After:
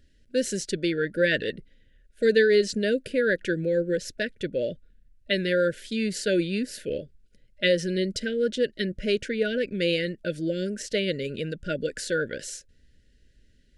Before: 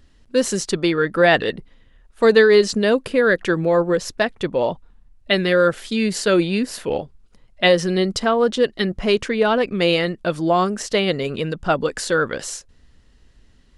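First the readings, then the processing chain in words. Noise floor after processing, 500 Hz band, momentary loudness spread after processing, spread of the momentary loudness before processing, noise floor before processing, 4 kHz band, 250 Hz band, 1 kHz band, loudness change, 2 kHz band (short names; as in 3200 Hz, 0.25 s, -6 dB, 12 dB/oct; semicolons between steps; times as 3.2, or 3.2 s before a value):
-61 dBFS, -7.5 dB, 9 LU, 9 LU, -54 dBFS, -7.0 dB, -7.0 dB, -20.5 dB, -7.5 dB, -7.0 dB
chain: brick-wall FIR band-stop 640–1400 Hz; gain -7 dB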